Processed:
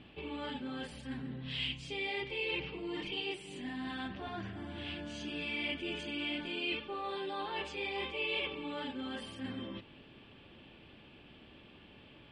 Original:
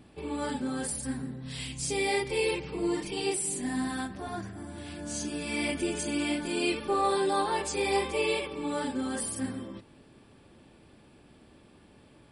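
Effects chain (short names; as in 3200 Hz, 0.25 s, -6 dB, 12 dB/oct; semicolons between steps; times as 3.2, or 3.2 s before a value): reverse; compressor 5:1, threshold -37 dBFS, peak gain reduction 13.5 dB; reverse; synth low-pass 3000 Hz, resonance Q 4.1; gain -1.5 dB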